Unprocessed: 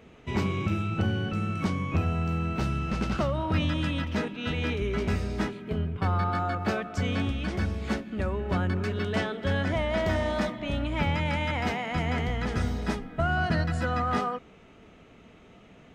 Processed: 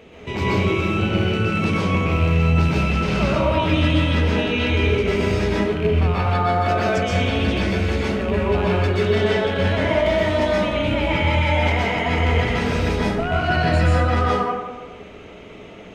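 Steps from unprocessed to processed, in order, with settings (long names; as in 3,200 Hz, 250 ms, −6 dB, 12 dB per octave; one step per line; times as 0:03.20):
loose part that buzzes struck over −26 dBFS, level −28 dBFS
drawn EQ curve 220 Hz 0 dB, 470 Hz +7 dB, 790 Hz +4 dB, 1,400 Hz +1 dB, 2,800 Hz +7 dB, 4,000 Hz +5 dB, 7,600 Hz +2 dB
brickwall limiter −20.5 dBFS, peak gain reduction 8.5 dB
dense smooth reverb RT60 1.1 s, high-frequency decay 0.5×, pre-delay 110 ms, DRR −5.5 dB
level +3 dB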